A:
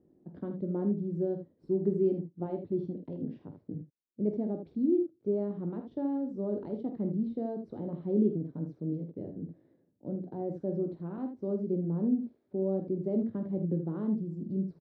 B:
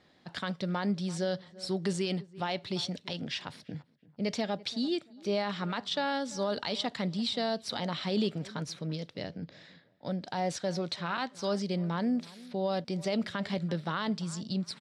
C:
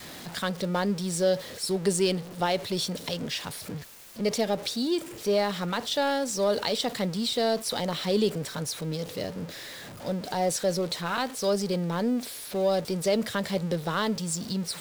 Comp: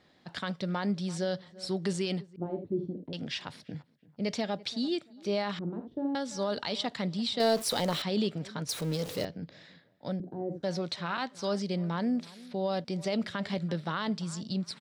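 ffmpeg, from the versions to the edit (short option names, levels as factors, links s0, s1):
-filter_complex "[0:a]asplit=3[s0][s1][s2];[2:a]asplit=2[s3][s4];[1:a]asplit=6[s5][s6][s7][s8][s9][s10];[s5]atrim=end=2.362[s11];[s0]atrim=start=2.358:end=3.132[s12];[s6]atrim=start=3.128:end=5.592[s13];[s1]atrim=start=5.588:end=6.152[s14];[s7]atrim=start=6.148:end=7.402[s15];[s3]atrim=start=7.398:end=8.022[s16];[s8]atrim=start=8.018:end=8.692[s17];[s4]atrim=start=8.688:end=9.252[s18];[s9]atrim=start=9.248:end=10.202[s19];[s2]atrim=start=10.198:end=10.632[s20];[s10]atrim=start=10.628[s21];[s11][s12]acrossfade=d=0.004:c1=hsin:c2=hsin[s22];[s22][s13]acrossfade=d=0.004:c1=hsin:c2=hsin[s23];[s23][s14]acrossfade=d=0.004:c1=hsin:c2=hsin[s24];[s24][s15]acrossfade=d=0.004:c1=hsin:c2=hsin[s25];[s25][s16]acrossfade=d=0.004:c1=hsin:c2=hsin[s26];[s26][s17]acrossfade=d=0.004:c1=hsin:c2=hsin[s27];[s27][s18]acrossfade=d=0.004:c1=hsin:c2=hsin[s28];[s28][s19]acrossfade=d=0.004:c1=hsin:c2=hsin[s29];[s29][s20]acrossfade=d=0.004:c1=hsin:c2=hsin[s30];[s30][s21]acrossfade=d=0.004:c1=hsin:c2=hsin"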